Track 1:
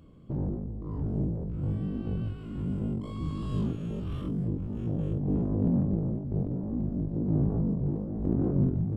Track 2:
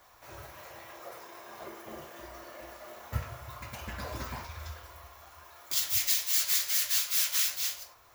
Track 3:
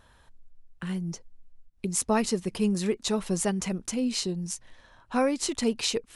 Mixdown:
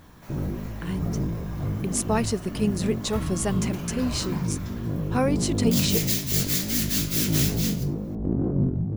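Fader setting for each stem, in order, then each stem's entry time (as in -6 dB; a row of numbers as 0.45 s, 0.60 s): +2.0 dB, +1.0 dB, +0.5 dB; 0.00 s, 0.00 s, 0.00 s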